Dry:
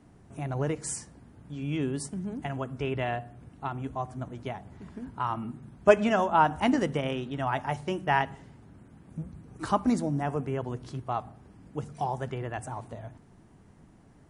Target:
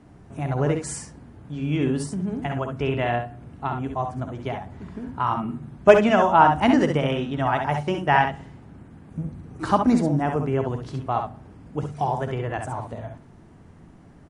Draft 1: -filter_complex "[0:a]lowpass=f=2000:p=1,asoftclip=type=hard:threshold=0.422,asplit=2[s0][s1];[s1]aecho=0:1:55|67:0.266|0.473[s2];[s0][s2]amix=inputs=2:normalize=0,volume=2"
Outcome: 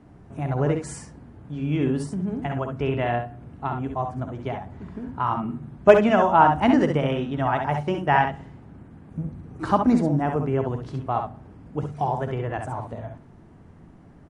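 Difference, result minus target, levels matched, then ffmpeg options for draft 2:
4 kHz band -3.0 dB
-filter_complex "[0:a]lowpass=f=4600:p=1,asoftclip=type=hard:threshold=0.422,asplit=2[s0][s1];[s1]aecho=0:1:55|67:0.266|0.473[s2];[s0][s2]amix=inputs=2:normalize=0,volume=2"

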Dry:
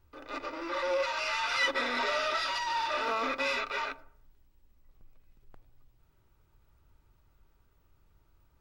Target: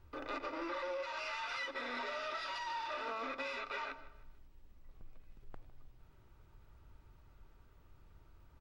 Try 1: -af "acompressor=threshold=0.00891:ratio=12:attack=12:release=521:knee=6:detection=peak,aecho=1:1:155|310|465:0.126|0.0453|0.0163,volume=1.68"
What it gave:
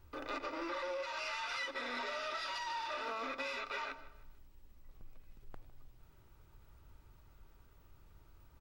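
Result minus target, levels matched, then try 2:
8 kHz band +4.0 dB
-af "acompressor=threshold=0.00891:ratio=12:attack=12:release=521:knee=6:detection=peak,highshelf=f=6200:g=-9.5,aecho=1:1:155|310|465:0.126|0.0453|0.0163,volume=1.68"

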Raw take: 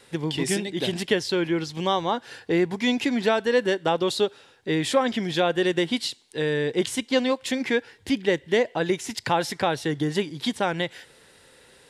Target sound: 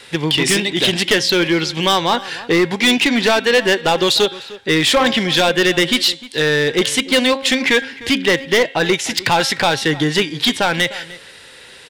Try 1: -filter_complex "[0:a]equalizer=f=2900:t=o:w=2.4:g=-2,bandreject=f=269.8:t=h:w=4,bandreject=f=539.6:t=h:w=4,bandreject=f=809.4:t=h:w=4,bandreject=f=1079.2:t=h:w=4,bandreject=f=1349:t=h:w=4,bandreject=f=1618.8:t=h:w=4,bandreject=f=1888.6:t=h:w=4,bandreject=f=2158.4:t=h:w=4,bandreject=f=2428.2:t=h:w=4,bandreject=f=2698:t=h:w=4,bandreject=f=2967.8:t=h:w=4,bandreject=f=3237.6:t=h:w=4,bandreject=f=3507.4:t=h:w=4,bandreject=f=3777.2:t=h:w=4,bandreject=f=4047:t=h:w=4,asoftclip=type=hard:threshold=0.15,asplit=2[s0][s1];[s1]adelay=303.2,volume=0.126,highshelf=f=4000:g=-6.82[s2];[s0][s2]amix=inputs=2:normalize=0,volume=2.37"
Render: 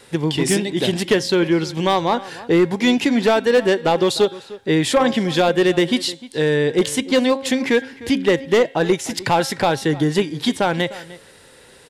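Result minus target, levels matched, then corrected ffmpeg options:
4 kHz band -6.0 dB
-filter_complex "[0:a]equalizer=f=2900:t=o:w=2.4:g=9.5,bandreject=f=269.8:t=h:w=4,bandreject=f=539.6:t=h:w=4,bandreject=f=809.4:t=h:w=4,bandreject=f=1079.2:t=h:w=4,bandreject=f=1349:t=h:w=4,bandreject=f=1618.8:t=h:w=4,bandreject=f=1888.6:t=h:w=4,bandreject=f=2158.4:t=h:w=4,bandreject=f=2428.2:t=h:w=4,bandreject=f=2698:t=h:w=4,bandreject=f=2967.8:t=h:w=4,bandreject=f=3237.6:t=h:w=4,bandreject=f=3507.4:t=h:w=4,bandreject=f=3777.2:t=h:w=4,bandreject=f=4047:t=h:w=4,asoftclip=type=hard:threshold=0.15,asplit=2[s0][s1];[s1]adelay=303.2,volume=0.126,highshelf=f=4000:g=-6.82[s2];[s0][s2]amix=inputs=2:normalize=0,volume=2.37"

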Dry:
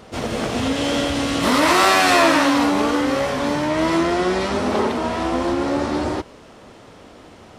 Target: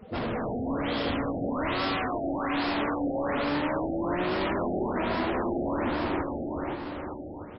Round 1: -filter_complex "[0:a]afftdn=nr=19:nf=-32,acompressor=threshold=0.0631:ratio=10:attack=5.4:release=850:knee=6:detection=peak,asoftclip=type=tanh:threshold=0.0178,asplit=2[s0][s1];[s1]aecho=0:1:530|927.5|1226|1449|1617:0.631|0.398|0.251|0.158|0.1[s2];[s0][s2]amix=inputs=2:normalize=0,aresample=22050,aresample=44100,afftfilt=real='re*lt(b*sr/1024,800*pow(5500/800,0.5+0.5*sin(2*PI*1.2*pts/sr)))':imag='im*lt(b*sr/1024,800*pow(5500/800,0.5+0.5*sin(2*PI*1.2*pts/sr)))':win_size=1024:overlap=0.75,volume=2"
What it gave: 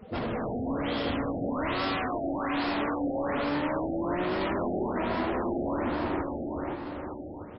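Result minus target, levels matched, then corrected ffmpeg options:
compression: peak gain reduction +7 dB
-filter_complex "[0:a]afftdn=nr=19:nf=-32,acompressor=threshold=0.15:ratio=10:attack=5.4:release=850:knee=6:detection=peak,asoftclip=type=tanh:threshold=0.0178,asplit=2[s0][s1];[s1]aecho=0:1:530|927.5|1226|1449|1617:0.631|0.398|0.251|0.158|0.1[s2];[s0][s2]amix=inputs=2:normalize=0,aresample=22050,aresample=44100,afftfilt=real='re*lt(b*sr/1024,800*pow(5500/800,0.5+0.5*sin(2*PI*1.2*pts/sr)))':imag='im*lt(b*sr/1024,800*pow(5500/800,0.5+0.5*sin(2*PI*1.2*pts/sr)))':win_size=1024:overlap=0.75,volume=2"

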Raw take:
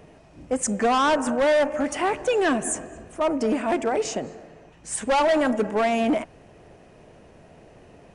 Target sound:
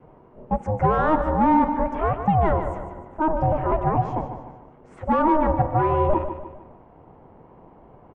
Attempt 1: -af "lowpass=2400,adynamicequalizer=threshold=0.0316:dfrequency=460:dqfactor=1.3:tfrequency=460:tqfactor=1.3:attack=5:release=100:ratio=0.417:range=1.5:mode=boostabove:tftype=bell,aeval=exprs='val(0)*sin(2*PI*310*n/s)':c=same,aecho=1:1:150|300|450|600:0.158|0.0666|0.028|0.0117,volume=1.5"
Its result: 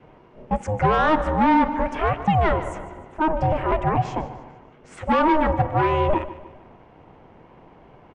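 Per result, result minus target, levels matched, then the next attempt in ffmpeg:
2 kHz band +6.0 dB; echo-to-direct -6 dB
-af "lowpass=1000,adynamicequalizer=threshold=0.0316:dfrequency=460:dqfactor=1.3:tfrequency=460:tqfactor=1.3:attack=5:release=100:ratio=0.417:range=1.5:mode=boostabove:tftype=bell,aeval=exprs='val(0)*sin(2*PI*310*n/s)':c=same,aecho=1:1:150|300|450|600:0.158|0.0666|0.028|0.0117,volume=1.5"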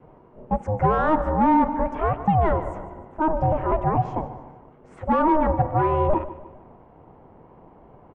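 echo-to-direct -6 dB
-af "lowpass=1000,adynamicequalizer=threshold=0.0316:dfrequency=460:dqfactor=1.3:tfrequency=460:tqfactor=1.3:attack=5:release=100:ratio=0.417:range=1.5:mode=boostabove:tftype=bell,aeval=exprs='val(0)*sin(2*PI*310*n/s)':c=same,aecho=1:1:150|300|450|600:0.316|0.133|0.0558|0.0234,volume=1.5"

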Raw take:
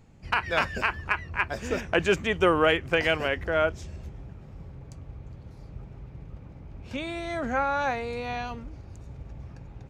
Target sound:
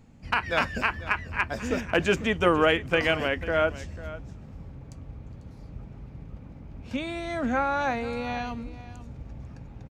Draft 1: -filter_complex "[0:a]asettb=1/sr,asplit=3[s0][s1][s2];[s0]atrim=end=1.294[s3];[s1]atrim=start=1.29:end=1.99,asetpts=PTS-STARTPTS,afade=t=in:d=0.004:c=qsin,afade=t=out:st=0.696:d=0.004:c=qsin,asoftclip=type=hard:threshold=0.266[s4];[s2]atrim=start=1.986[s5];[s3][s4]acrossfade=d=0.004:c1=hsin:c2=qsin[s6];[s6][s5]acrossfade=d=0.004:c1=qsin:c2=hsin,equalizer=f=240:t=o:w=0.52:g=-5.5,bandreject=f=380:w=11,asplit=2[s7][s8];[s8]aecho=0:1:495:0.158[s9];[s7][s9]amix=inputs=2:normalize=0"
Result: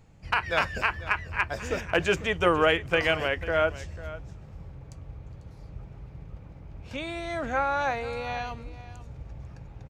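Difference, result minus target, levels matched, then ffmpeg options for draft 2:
250 Hz band -4.5 dB
-filter_complex "[0:a]asettb=1/sr,asplit=3[s0][s1][s2];[s0]atrim=end=1.294[s3];[s1]atrim=start=1.29:end=1.99,asetpts=PTS-STARTPTS,afade=t=in:d=0.004:c=qsin,afade=t=out:st=0.696:d=0.004:c=qsin,asoftclip=type=hard:threshold=0.266[s4];[s2]atrim=start=1.986[s5];[s3][s4]acrossfade=d=0.004:c1=hsin:c2=qsin[s6];[s6][s5]acrossfade=d=0.004:c1=qsin:c2=hsin,equalizer=f=240:t=o:w=0.52:g=6,bandreject=f=380:w=11,asplit=2[s7][s8];[s8]aecho=0:1:495:0.158[s9];[s7][s9]amix=inputs=2:normalize=0"

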